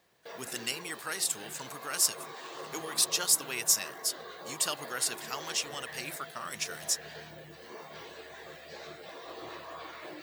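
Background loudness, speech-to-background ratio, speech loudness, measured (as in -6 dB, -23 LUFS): -45.0 LUFS, 14.0 dB, -31.0 LUFS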